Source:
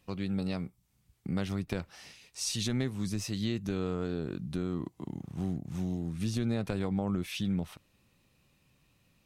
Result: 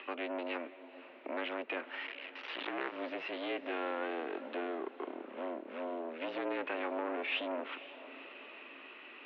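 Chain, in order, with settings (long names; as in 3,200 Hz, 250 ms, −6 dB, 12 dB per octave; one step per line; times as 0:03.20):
0:02.06–0:02.95: sub-harmonics by changed cycles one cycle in 2, muted
parametric band 520 Hz −12 dB 1.2 octaves
in parallel at +0.5 dB: upward compression, threshold −36 dBFS
on the sum: soft clipping −31 dBFS, distortion −8 dB
high-frequency loss of the air 77 metres
feedback delay with all-pass diffusion 496 ms, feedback 53%, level −14.5 dB
single-sideband voice off tune +76 Hz 320–2,800 Hz
level +7 dB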